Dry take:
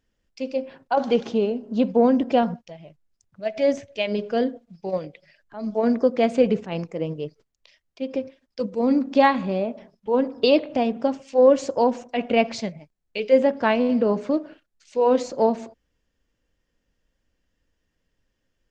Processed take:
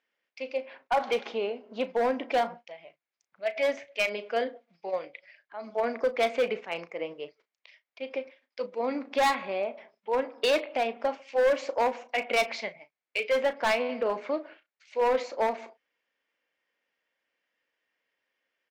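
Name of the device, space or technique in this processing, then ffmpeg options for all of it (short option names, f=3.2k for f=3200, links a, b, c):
megaphone: -filter_complex "[0:a]highpass=640,lowpass=3.6k,equalizer=f=2.2k:t=o:w=0.32:g=8,asoftclip=type=hard:threshold=-20dB,asplit=2[a][b];[b]adelay=35,volume=-13dB[c];[a][c]amix=inputs=2:normalize=0"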